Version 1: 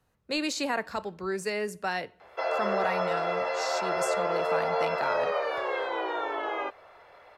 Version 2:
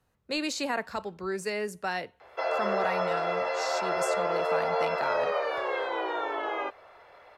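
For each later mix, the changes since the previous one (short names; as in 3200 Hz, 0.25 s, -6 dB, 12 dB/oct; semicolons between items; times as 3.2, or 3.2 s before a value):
reverb: off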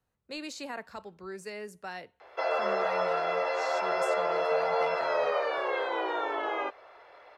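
speech -8.5 dB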